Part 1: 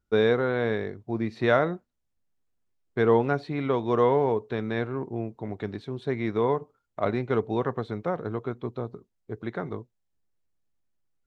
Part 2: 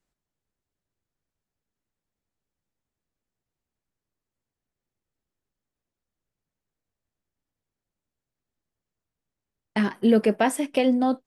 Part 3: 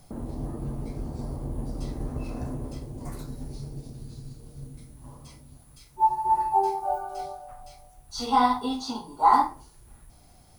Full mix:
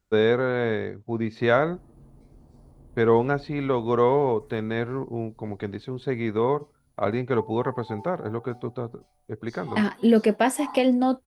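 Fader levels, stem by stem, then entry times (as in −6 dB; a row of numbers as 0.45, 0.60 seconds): +1.5, +0.5, −18.5 decibels; 0.00, 0.00, 1.35 seconds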